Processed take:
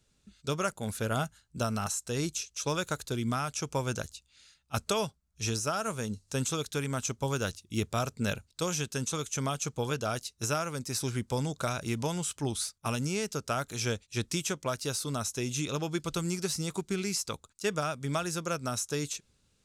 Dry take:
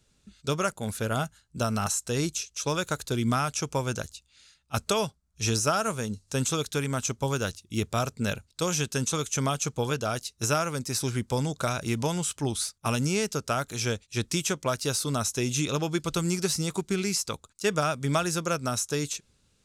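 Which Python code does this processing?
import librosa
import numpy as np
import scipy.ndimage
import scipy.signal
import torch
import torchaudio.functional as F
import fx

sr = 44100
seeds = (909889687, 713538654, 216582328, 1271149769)

y = fx.rider(x, sr, range_db=3, speed_s=0.5)
y = F.gain(torch.from_numpy(y), -4.0).numpy()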